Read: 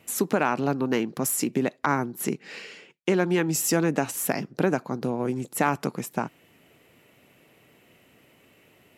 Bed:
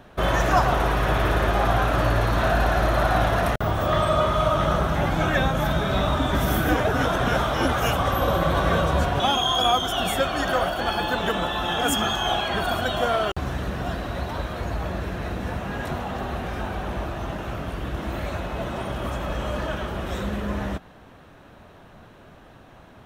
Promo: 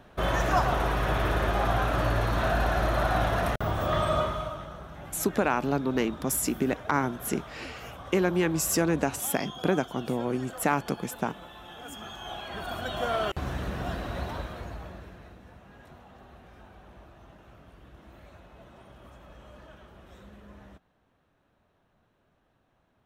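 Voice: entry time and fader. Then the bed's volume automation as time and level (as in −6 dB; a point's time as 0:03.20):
5.05 s, −2.0 dB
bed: 0:04.18 −5 dB
0:04.70 −20.5 dB
0:11.84 −20.5 dB
0:13.24 −4.5 dB
0:14.27 −4.5 dB
0:15.45 −22 dB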